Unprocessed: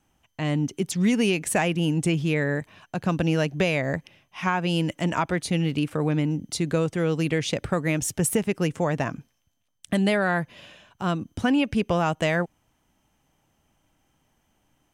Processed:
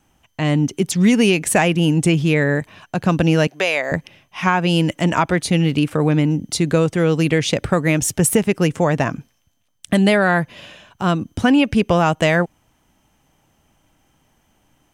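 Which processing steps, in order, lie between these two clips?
0:03.47–0:03.92: high-pass filter 560 Hz 12 dB per octave
level +7.5 dB

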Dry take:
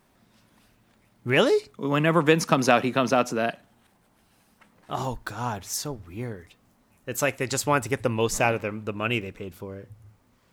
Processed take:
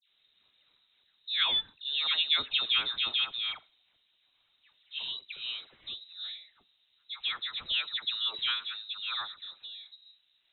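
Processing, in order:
high-frequency loss of the air 120 metres
voice inversion scrambler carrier 3,900 Hz
all-pass dispersion lows, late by 100 ms, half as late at 1,900 Hz
level −8 dB

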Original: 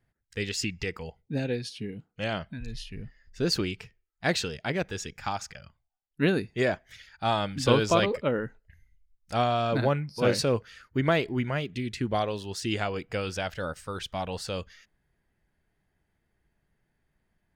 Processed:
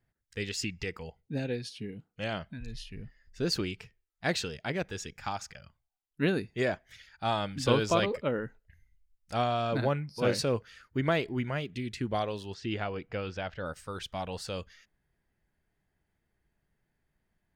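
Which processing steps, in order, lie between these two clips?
0:12.54–0:13.66: high-frequency loss of the air 180 metres
level −3.5 dB

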